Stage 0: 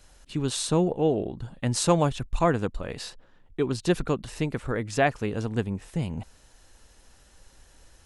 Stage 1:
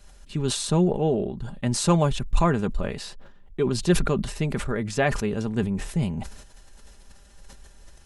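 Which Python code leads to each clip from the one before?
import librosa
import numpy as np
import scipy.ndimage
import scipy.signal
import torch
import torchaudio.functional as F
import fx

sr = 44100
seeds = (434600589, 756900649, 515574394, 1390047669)

y = fx.low_shelf(x, sr, hz=210.0, db=5.0)
y = y + 0.45 * np.pad(y, (int(5.0 * sr / 1000.0), 0))[:len(y)]
y = fx.sustainer(y, sr, db_per_s=69.0)
y = y * 10.0 ** (-1.0 / 20.0)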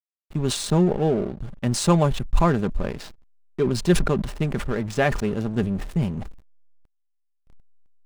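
y = fx.backlash(x, sr, play_db=-30.5)
y = y * 10.0 ** (2.0 / 20.0)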